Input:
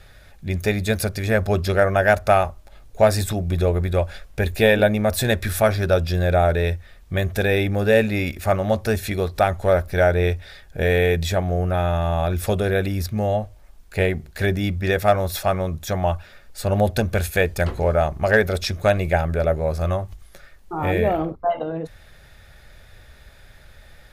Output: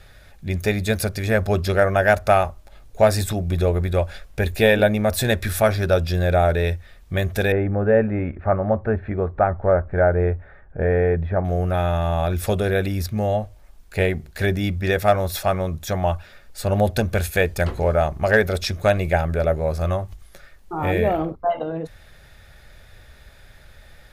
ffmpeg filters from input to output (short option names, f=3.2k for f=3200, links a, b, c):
-filter_complex "[0:a]asettb=1/sr,asplit=3[a][b][c];[a]atrim=end=7.524[d];[b]atrim=start=7.52:end=11.45,asetpts=PTS-STARTPTS,afade=t=in:d=0.004:c=qsin,afade=t=out:st=3.926:d=0.004:c=qsin,lowpass=f=1.6k:w=0.5412,lowpass=f=1.6k:w=1.3066[e];[c]atrim=start=11.446[f];[d][e]acrossfade=d=0.004:c1=hsin:c2=qsin[g];[g][f]acrossfade=d=0.004:c1=qsin:c2=hsin"